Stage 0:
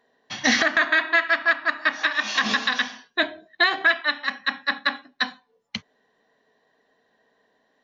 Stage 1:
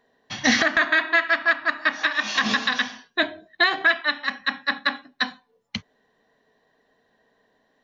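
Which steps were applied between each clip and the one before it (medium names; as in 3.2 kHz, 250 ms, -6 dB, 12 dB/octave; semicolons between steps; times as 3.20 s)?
bass shelf 120 Hz +11.5 dB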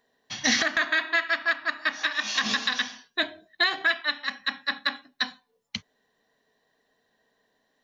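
treble shelf 3.5 kHz +11 dB; trim -7 dB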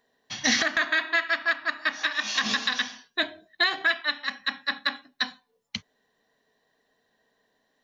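no audible change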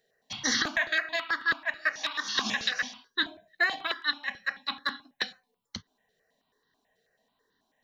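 stepped phaser 9.2 Hz 270–2400 Hz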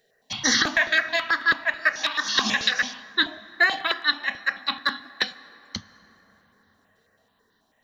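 plate-style reverb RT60 4.8 s, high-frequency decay 0.4×, DRR 16.5 dB; trim +6.5 dB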